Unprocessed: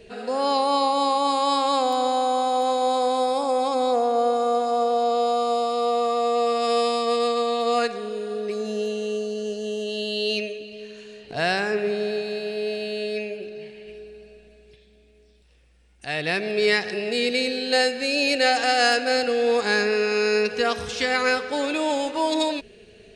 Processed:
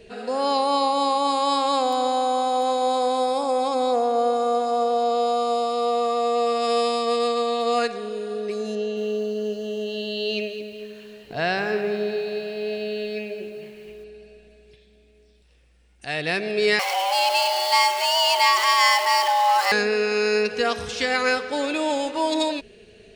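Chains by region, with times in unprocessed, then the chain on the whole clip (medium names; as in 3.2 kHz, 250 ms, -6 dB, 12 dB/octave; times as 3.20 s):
8.75–14.04 s: distance through air 110 m + bit-crushed delay 217 ms, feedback 35%, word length 8-bit, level -12 dB
16.79–19.72 s: jump at every zero crossing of -24.5 dBFS + frequency shift +360 Hz
whole clip: none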